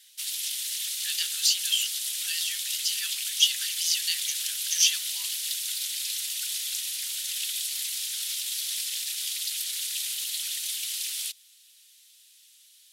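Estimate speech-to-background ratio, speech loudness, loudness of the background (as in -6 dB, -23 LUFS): 1.5 dB, -27.0 LUFS, -28.5 LUFS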